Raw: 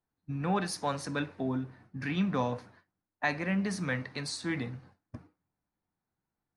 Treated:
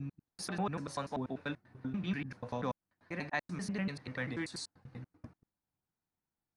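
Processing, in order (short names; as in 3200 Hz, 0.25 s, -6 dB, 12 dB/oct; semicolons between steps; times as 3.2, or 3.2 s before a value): slices in reverse order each 97 ms, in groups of 4; gain -5.5 dB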